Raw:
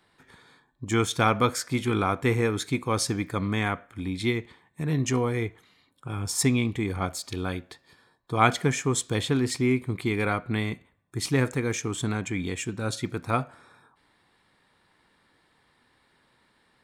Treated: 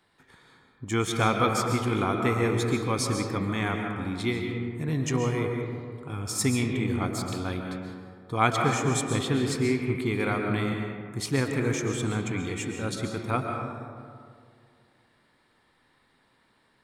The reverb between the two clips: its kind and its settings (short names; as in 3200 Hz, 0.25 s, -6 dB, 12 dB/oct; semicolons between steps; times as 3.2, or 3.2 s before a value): digital reverb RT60 2.2 s, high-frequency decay 0.35×, pre-delay 95 ms, DRR 2.5 dB; gain -2.5 dB